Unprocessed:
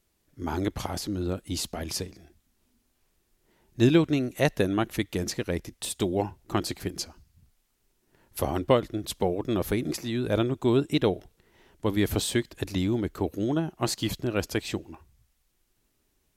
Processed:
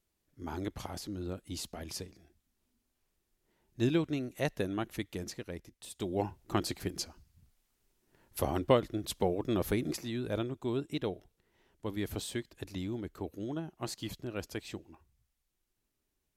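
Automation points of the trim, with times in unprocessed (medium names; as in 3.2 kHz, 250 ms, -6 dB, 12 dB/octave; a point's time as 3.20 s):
5.08 s -9 dB
5.84 s -15.5 dB
6.24 s -4 dB
9.79 s -4 dB
10.60 s -11 dB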